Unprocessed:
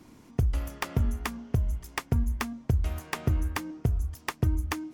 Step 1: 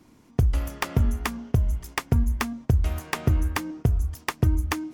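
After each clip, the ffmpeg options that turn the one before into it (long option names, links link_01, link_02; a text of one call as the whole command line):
ffmpeg -i in.wav -af "agate=range=-7dB:threshold=-46dB:ratio=16:detection=peak,volume=4.5dB" out.wav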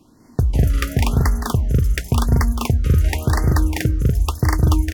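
ffmpeg -i in.wav -af "aecho=1:1:166.2|201.2|242:0.398|0.891|0.891,afftfilt=real='re*(1-between(b*sr/1024,790*pow(3100/790,0.5+0.5*sin(2*PI*0.94*pts/sr))/1.41,790*pow(3100/790,0.5+0.5*sin(2*PI*0.94*pts/sr))*1.41))':imag='im*(1-between(b*sr/1024,790*pow(3100/790,0.5+0.5*sin(2*PI*0.94*pts/sr))/1.41,790*pow(3100/790,0.5+0.5*sin(2*PI*0.94*pts/sr))*1.41))':win_size=1024:overlap=0.75,volume=3dB" out.wav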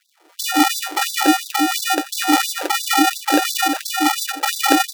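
ffmpeg -i in.wav -af "afreqshift=-360,acrusher=samples=41:mix=1:aa=0.000001,afftfilt=real='re*gte(b*sr/1024,260*pow(3600/260,0.5+0.5*sin(2*PI*2.9*pts/sr)))':imag='im*gte(b*sr/1024,260*pow(3600/260,0.5+0.5*sin(2*PI*2.9*pts/sr)))':win_size=1024:overlap=0.75,volume=5dB" out.wav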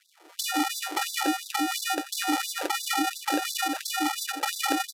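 ffmpeg -i in.wav -af "acompressor=threshold=-29dB:ratio=2.5,aresample=32000,aresample=44100" out.wav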